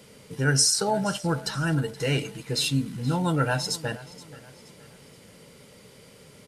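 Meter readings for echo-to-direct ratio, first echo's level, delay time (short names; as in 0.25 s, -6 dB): -18.0 dB, -19.0 dB, 0.474 s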